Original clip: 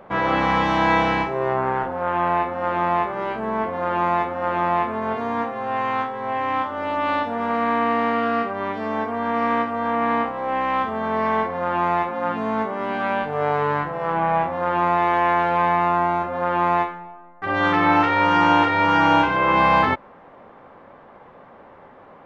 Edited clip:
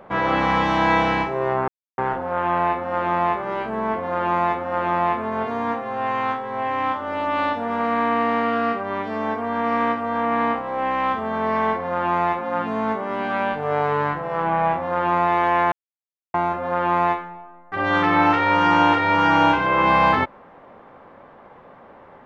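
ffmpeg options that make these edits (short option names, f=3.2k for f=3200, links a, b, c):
-filter_complex "[0:a]asplit=4[a][b][c][d];[a]atrim=end=1.68,asetpts=PTS-STARTPTS,afade=t=out:st=1.676:d=0.004:c=hsin,apad=pad_dur=0.3[e];[b]atrim=start=1.68:end=15.42,asetpts=PTS-STARTPTS,afade=t=in:d=0.004:c=hsin,afade=t=out:st=13.736:d=0.004:c=hsin[f];[c]atrim=start=15.42:end=16.04,asetpts=PTS-STARTPTS,volume=0[g];[d]atrim=start=16.04,asetpts=PTS-STARTPTS,afade=t=in:d=0.004:c=hsin[h];[e][f][g][h]concat=n=4:v=0:a=1"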